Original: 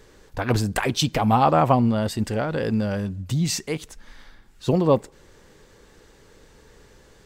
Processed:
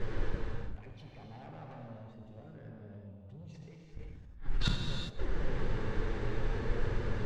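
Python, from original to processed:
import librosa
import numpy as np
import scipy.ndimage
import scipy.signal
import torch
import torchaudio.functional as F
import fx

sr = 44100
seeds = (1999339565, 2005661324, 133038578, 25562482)

y = scipy.signal.sosfilt(scipy.signal.butter(2, 2500.0, 'lowpass', fs=sr, output='sos'), x)
y = fx.low_shelf(y, sr, hz=130.0, db=11.5)
y = fx.env_flanger(y, sr, rest_ms=11.4, full_db=-17.0)
y = 10.0 ** (-21.5 / 20.0) * np.tanh(y / 10.0 ** (-21.5 / 20.0))
y = fx.gate_flip(y, sr, shuts_db=-31.0, range_db=-40)
y = y + 10.0 ** (-17.5 / 20.0) * np.pad(y, (int(163 * sr / 1000.0), 0))[:len(y)]
y = fx.rev_gated(y, sr, seeds[0], gate_ms=430, shape='flat', drr_db=-1.0)
y = fx.sustainer(y, sr, db_per_s=40.0, at=(3.25, 4.76))
y = y * librosa.db_to_amplitude(13.0)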